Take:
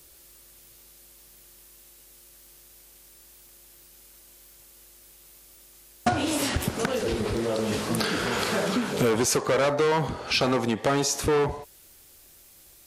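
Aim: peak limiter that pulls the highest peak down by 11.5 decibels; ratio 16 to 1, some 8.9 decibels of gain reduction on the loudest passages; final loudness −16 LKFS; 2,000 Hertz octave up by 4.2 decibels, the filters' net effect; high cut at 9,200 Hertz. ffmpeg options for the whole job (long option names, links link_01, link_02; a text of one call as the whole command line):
ffmpeg -i in.wav -af "lowpass=9200,equalizer=frequency=2000:width_type=o:gain=5.5,acompressor=threshold=-27dB:ratio=16,volume=20.5dB,alimiter=limit=-7.5dB:level=0:latency=1" out.wav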